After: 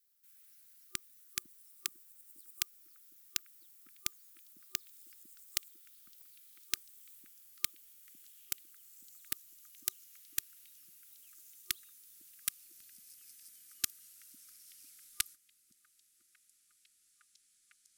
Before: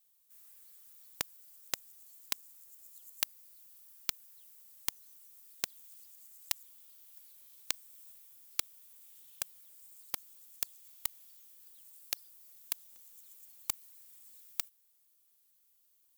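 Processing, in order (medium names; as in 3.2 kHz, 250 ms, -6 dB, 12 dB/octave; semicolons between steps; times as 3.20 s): gliding tape speed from 129% -> 51%; repeats whose band climbs or falls 502 ms, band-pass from 250 Hz, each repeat 0.7 oct, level -11 dB; FFT band-reject 370–1200 Hz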